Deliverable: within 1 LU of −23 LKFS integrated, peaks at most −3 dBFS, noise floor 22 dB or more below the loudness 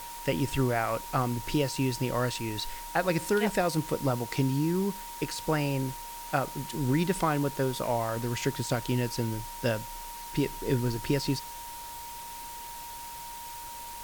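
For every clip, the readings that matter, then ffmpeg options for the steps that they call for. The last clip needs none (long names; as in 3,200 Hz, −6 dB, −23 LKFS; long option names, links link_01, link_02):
interfering tone 940 Hz; level of the tone −41 dBFS; background noise floor −41 dBFS; target noise floor −53 dBFS; integrated loudness −30.5 LKFS; sample peak −13.0 dBFS; target loudness −23.0 LKFS
→ -af "bandreject=frequency=940:width=30"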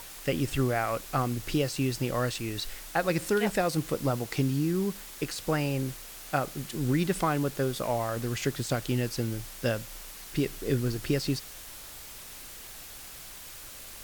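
interfering tone none found; background noise floor −45 dBFS; target noise floor −52 dBFS
→ -af "afftdn=noise_reduction=7:noise_floor=-45"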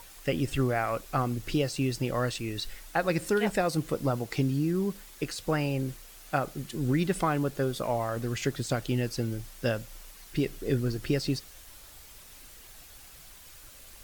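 background noise floor −51 dBFS; target noise floor −52 dBFS
→ -af "afftdn=noise_reduction=6:noise_floor=-51"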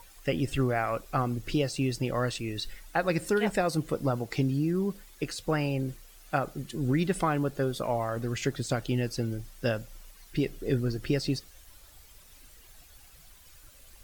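background noise floor −54 dBFS; integrated loudness −30.5 LKFS; sample peak −13.5 dBFS; target loudness −23.0 LKFS
→ -af "volume=7.5dB"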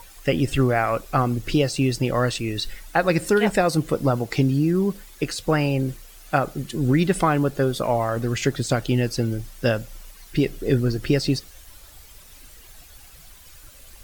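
integrated loudness −23.0 LKFS; sample peak −6.0 dBFS; background noise floor −47 dBFS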